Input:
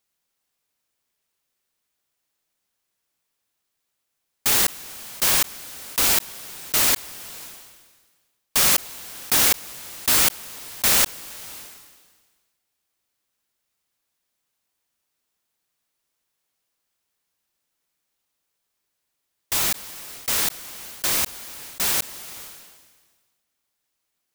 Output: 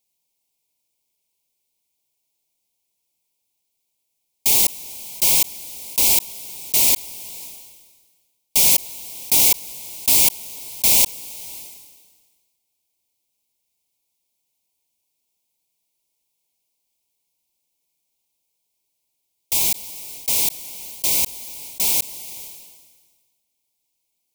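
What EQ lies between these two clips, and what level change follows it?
elliptic band-stop filter 980–2,200 Hz, stop band 70 dB
high-shelf EQ 4,600 Hz +5.5 dB
−1.0 dB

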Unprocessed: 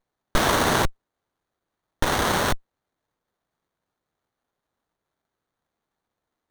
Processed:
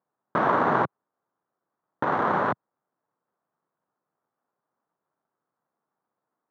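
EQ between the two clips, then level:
high-pass filter 130 Hz 24 dB per octave
low-pass with resonance 1,200 Hz, resonance Q 1.6
−2.5 dB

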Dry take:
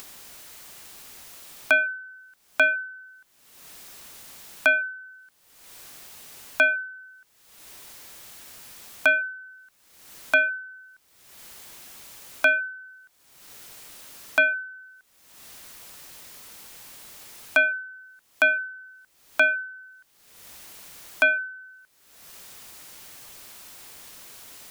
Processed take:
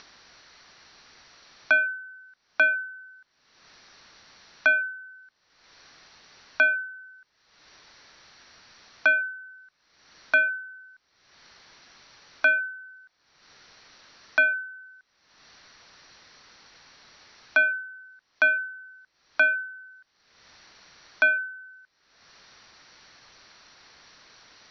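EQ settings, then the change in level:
Chebyshev low-pass with heavy ripple 5,900 Hz, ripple 6 dB
0.0 dB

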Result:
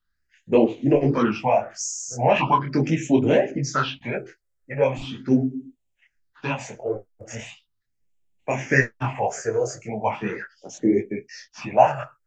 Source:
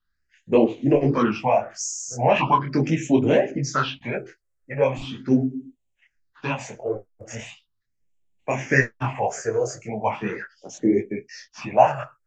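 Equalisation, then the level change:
notch filter 1,100 Hz, Q 19
0.0 dB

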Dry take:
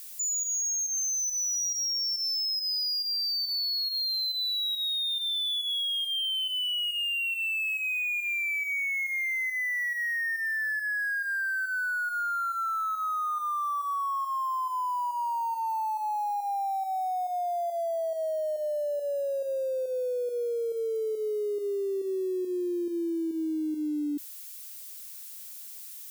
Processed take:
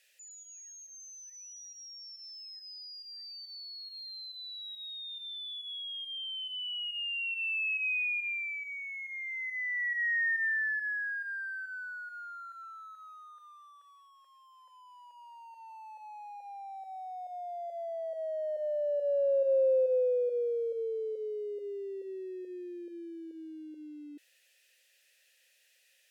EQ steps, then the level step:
formant filter e
low-shelf EQ 230 Hz −10.5 dB
+6.5 dB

